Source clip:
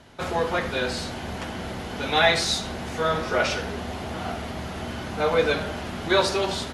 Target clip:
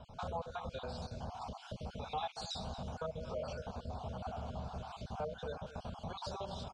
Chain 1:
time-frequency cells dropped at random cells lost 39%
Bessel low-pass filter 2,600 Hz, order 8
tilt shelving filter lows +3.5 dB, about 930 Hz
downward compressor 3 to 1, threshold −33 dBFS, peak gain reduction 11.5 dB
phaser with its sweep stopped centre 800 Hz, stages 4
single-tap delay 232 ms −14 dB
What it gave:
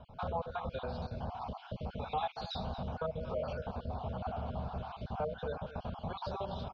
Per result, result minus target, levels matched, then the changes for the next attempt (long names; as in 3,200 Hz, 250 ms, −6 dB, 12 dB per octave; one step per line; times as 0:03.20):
4,000 Hz band −4.5 dB; downward compressor: peak gain reduction −4 dB
change: Bessel low-pass filter 5,400 Hz, order 8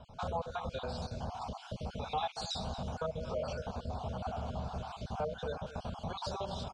downward compressor: peak gain reduction −4 dB
change: downward compressor 3 to 1, threshold −39 dBFS, peak gain reduction 16 dB